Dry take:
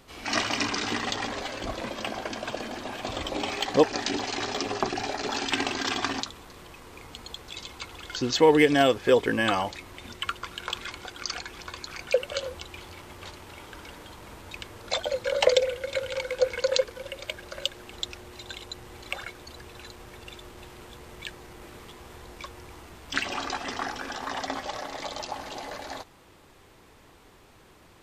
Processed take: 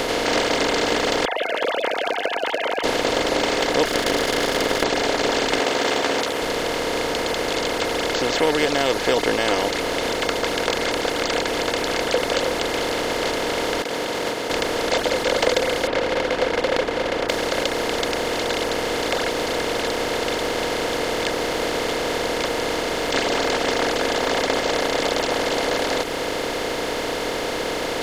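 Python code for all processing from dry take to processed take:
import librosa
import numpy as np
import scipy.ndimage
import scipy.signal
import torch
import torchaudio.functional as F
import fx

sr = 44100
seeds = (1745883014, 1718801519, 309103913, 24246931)

y = fx.chain(x, sr, fx.sine_speech(),
    fx.highpass(hz=390.0, slope=24), at=(1.25, 2.84))
y = fx.chain(y, sr, fx.lower_of_two(delay_ms=0.59),
    fx.peak_eq(hz=12000.0, db=4.5, octaves=1.3), at=(3.85, 4.84))
y = fx.chain(y, sr, fx.highpass(hz=400.0, slope=12),
    fx.peak_eq(hz=4800.0, db=-9.0, octaves=0.71),
    fx.doubler(ms=14.0, db=-3.5), at=(5.6, 6.42))
y = fx.chain(y, sr, fx.gate_hold(open_db=-33.0, close_db=-42.0, hold_ms=71.0, range_db=-21, attack_ms=1.4, release_ms=100.0),
    fx.highpass(hz=140.0, slope=24),
    fx.over_compress(threshold_db=-55.0, ratio=-1.0), at=(13.82, 14.5))
y = fx.chain(y, sr, fx.median_filter(points=15),
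    fx.lowpass(hz=2700.0, slope=24), at=(15.87, 17.29))
y = fx.bin_compress(y, sr, power=0.2)
y = fx.dereverb_blind(y, sr, rt60_s=0.57)
y = fx.high_shelf(y, sr, hz=7800.0, db=4.0)
y = y * librosa.db_to_amplitude(-5.0)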